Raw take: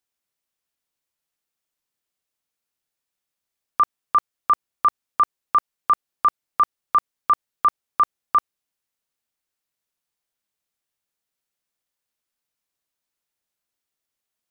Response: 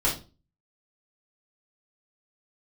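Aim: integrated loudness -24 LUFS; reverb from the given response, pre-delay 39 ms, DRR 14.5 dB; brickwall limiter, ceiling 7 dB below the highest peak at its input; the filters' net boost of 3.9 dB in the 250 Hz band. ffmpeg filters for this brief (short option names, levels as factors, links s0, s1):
-filter_complex "[0:a]equalizer=f=250:t=o:g=5,alimiter=limit=0.141:level=0:latency=1,asplit=2[s0][s1];[1:a]atrim=start_sample=2205,adelay=39[s2];[s1][s2]afir=irnorm=-1:irlink=0,volume=0.0531[s3];[s0][s3]amix=inputs=2:normalize=0,volume=1.78"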